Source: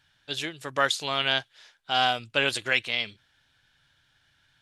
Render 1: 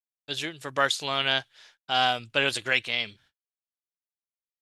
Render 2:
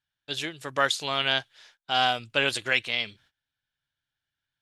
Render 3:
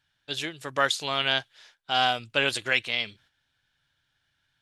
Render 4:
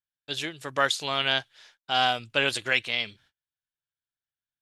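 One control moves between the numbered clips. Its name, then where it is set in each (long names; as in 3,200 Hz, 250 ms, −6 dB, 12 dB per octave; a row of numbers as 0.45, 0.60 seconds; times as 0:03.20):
noise gate, range: −59, −21, −8, −34 decibels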